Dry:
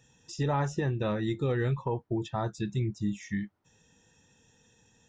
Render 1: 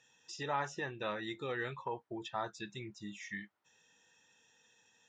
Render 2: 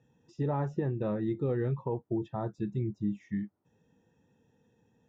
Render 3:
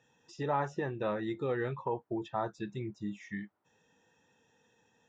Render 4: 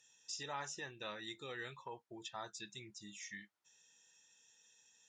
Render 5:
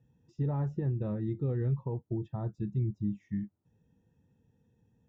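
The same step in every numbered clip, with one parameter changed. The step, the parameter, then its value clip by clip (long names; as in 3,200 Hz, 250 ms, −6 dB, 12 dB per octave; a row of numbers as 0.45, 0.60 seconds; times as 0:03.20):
resonant band-pass, frequency: 2,300, 290, 880, 6,500, 110 Hertz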